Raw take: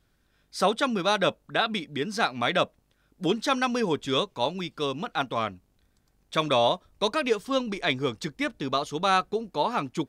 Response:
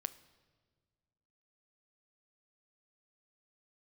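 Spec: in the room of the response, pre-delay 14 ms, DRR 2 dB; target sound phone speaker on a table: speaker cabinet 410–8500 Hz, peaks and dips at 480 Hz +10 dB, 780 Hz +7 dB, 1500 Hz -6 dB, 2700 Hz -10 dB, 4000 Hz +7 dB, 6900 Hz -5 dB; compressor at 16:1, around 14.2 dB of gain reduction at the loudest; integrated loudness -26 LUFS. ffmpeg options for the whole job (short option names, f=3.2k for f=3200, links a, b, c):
-filter_complex "[0:a]acompressor=threshold=-32dB:ratio=16,asplit=2[a][b];[1:a]atrim=start_sample=2205,adelay=14[c];[b][c]afir=irnorm=-1:irlink=0,volume=-0.5dB[d];[a][d]amix=inputs=2:normalize=0,highpass=f=410:w=0.5412,highpass=f=410:w=1.3066,equalizer=f=480:t=q:w=4:g=10,equalizer=f=780:t=q:w=4:g=7,equalizer=f=1.5k:t=q:w=4:g=-6,equalizer=f=2.7k:t=q:w=4:g=-10,equalizer=f=4k:t=q:w=4:g=7,equalizer=f=6.9k:t=q:w=4:g=-5,lowpass=f=8.5k:w=0.5412,lowpass=f=8.5k:w=1.3066,volume=8dB"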